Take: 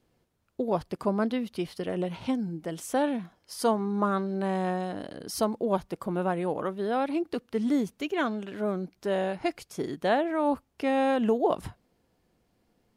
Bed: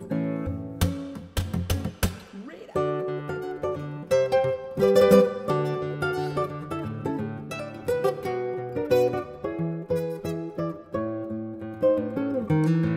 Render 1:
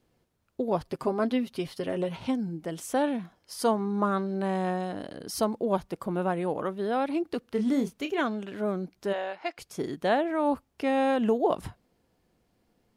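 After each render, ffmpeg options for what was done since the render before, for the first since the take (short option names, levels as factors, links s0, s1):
-filter_complex "[0:a]asettb=1/sr,asplit=3[s0][s1][s2];[s0]atrim=end=0.844[s3];[s1]atrim=start=0.84:end=2.17,asetpts=PTS-STARTPTS,afade=t=in:d=0.004:c=qsin,afade=t=out:st=1.326:d=0.004:c=qsin,aecho=1:1:7.5:0.56,atrim=end_sample=58653[s4];[s2]atrim=start=2.166[s5];[s3][s4]acrossfade=d=0.004:c1=hsin:c2=qsin[s6];[s6][s5]acrossfade=d=0.004:c1=qsin:c2=hsin,asettb=1/sr,asplit=3[s7][s8][s9];[s7]atrim=end=7.404[s10];[s8]atrim=start=7.4:end=8.21,asetpts=PTS-STARTPTS,afade=t=in:d=0.004:c=qsin,afade=t=out:st=0.806:d=0.004:c=qsin,asplit=2[s11][s12];[s12]adelay=29,volume=0.376[s13];[s11][s13]amix=inputs=2:normalize=0,atrim=end_sample=35721[s14];[s9]atrim=start=8.206[s15];[s10][s14]acrossfade=d=0.004:c1=hsin:c2=qsin[s16];[s16][s15]acrossfade=d=0.004:c1=qsin:c2=hsin,asplit=3[s17][s18][s19];[s17]afade=t=out:st=9.12:d=0.02[s20];[s18]highpass=620,lowpass=4500,afade=t=in:st=9.12:d=0.02,afade=t=out:st=9.57:d=0.02[s21];[s19]afade=t=in:st=9.57:d=0.02[s22];[s20][s21][s22]amix=inputs=3:normalize=0"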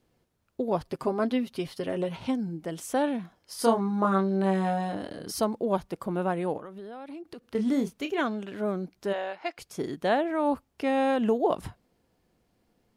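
-filter_complex "[0:a]asettb=1/sr,asplit=3[s0][s1][s2];[s0]atrim=end=3.564[s3];[s1]atrim=start=3.56:end=5.32,asetpts=PTS-STARTPTS,afade=t=in:d=0.004:c=qsin,afade=t=out:st=1.756:d=0.004:c=qsin,asplit=2[s4][s5];[s5]adelay=26,volume=0.708[s6];[s4][s6]amix=inputs=2:normalize=0,atrim=end_sample=77616[s7];[s2]atrim=start=5.316[s8];[s3][s7]acrossfade=d=0.004:c1=hsin:c2=qsin[s9];[s9][s8]acrossfade=d=0.004:c1=qsin:c2=hsin,asettb=1/sr,asplit=3[s10][s11][s12];[s10]atrim=end=6.574[s13];[s11]atrim=start=6.57:end=7.55,asetpts=PTS-STARTPTS,afade=t=in:d=0.004:c=qsin,afade=t=out:st=0.976:d=0.004:c=qsin,acompressor=threshold=0.0126:ratio=8:attack=3.2:release=140:knee=1:detection=peak[s14];[s12]atrim=start=7.546[s15];[s13][s14]acrossfade=d=0.004:c1=hsin:c2=qsin[s16];[s16][s15]acrossfade=d=0.004:c1=qsin:c2=hsin"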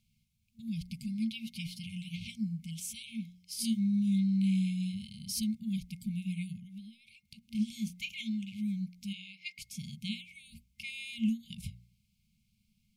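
-af "bandreject=f=59.77:t=h:w=4,bandreject=f=119.54:t=h:w=4,bandreject=f=179.31:t=h:w=4,bandreject=f=239.08:t=h:w=4,bandreject=f=298.85:t=h:w=4,bandreject=f=358.62:t=h:w=4,bandreject=f=418.39:t=h:w=4,bandreject=f=478.16:t=h:w=4,bandreject=f=537.93:t=h:w=4,bandreject=f=597.7:t=h:w=4,bandreject=f=657.47:t=h:w=4,bandreject=f=717.24:t=h:w=4,bandreject=f=777.01:t=h:w=4,bandreject=f=836.78:t=h:w=4,bandreject=f=896.55:t=h:w=4,bandreject=f=956.32:t=h:w=4,bandreject=f=1016.09:t=h:w=4,bandreject=f=1075.86:t=h:w=4,bandreject=f=1135.63:t=h:w=4,bandreject=f=1195.4:t=h:w=4,bandreject=f=1255.17:t=h:w=4,bandreject=f=1314.94:t=h:w=4,bandreject=f=1374.71:t=h:w=4,bandreject=f=1434.48:t=h:w=4,bandreject=f=1494.25:t=h:w=4,bandreject=f=1554.02:t=h:w=4,bandreject=f=1613.79:t=h:w=4,bandreject=f=1673.56:t=h:w=4,bandreject=f=1733.33:t=h:w=4,bandreject=f=1793.1:t=h:w=4,bandreject=f=1852.87:t=h:w=4,bandreject=f=1912.64:t=h:w=4,bandreject=f=1972.41:t=h:w=4,bandreject=f=2032.18:t=h:w=4,bandreject=f=2091.95:t=h:w=4,bandreject=f=2151.72:t=h:w=4,afftfilt=real='re*(1-between(b*sr/4096,230,2100))':imag='im*(1-between(b*sr/4096,230,2100))':win_size=4096:overlap=0.75"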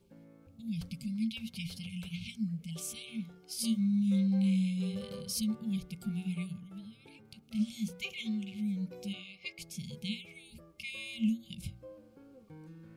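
-filter_complex "[1:a]volume=0.0355[s0];[0:a][s0]amix=inputs=2:normalize=0"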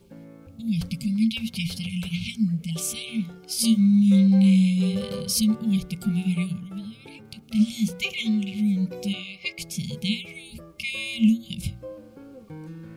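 -af "volume=3.76"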